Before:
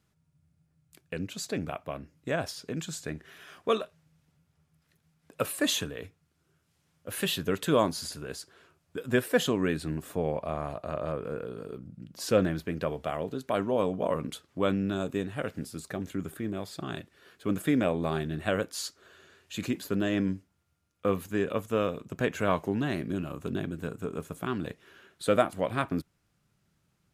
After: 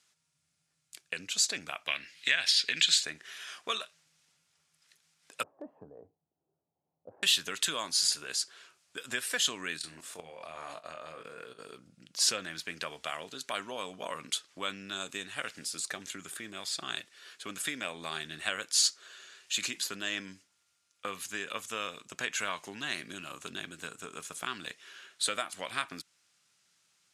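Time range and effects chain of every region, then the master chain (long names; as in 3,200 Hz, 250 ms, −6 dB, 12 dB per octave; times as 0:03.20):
0:01.87–0:03.03: flat-topped bell 2,700 Hz +13.5 dB + one half of a high-frequency compander encoder only
0:05.43–0:07.23: elliptic low-pass filter 810 Hz, stop band 80 dB + dynamic equaliser 330 Hz, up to −5 dB, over −41 dBFS, Q 0.86
0:09.77–0:11.59: flutter between parallel walls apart 4.2 metres, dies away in 0.23 s + output level in coarse steps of 13 dB
whole clip: dynamic equaliser 510 Hz, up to −6 dB, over −40 dBFS, Q 0.84; downward compressor, threshold −29 dBFS; meter weighting curve ITU-R 468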